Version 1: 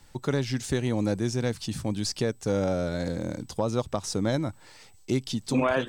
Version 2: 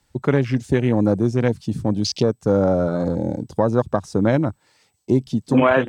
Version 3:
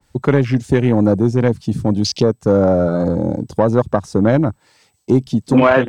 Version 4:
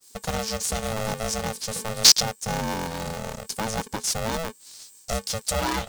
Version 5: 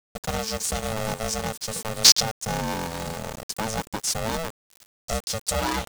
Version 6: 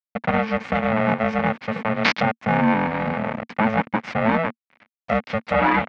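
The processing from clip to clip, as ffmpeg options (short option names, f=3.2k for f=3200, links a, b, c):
-af "afwtdn=0.0141,highpass=84,volume=9dB"
-filter_complex "[0:a]asplit=2[a][b];[b]asoftclip=type=tanh:threshold=-14dB,volume=-3.5dB[c];[a][c]amix=inputs=2:normalize=0,adynamicequalizer=threshold=0.02:dfrequency=2000:dqfactor=0.7:tfrequency=2000:tqfactor=0.7:attack=5:release=100:ratio=0.375:range=2:mode=cutabove:tftype=highshelf,volume=1dB"
-af "aexciter=amount=14.6:drive=8.8:freq=3.8k,aeval=exprs='val(0)*sgn(sin(2*PI*330*n/s))':c=same,volume=-15dB"
-af "aeval=exprs='val(0)*gte(abs(val(0)),0.0168)':c=same"
-af "highpass=150,equalizer=f=230:t=q:w=4:g=7,equalizer=f=390:t=q:w=4:g=-9,equalizer=f=2.2k:t=q:w=4:g=6,lowpass=f=2.3k:w=0.5412,lowpass=f=2.3k:w=1.3066,volume=9dB"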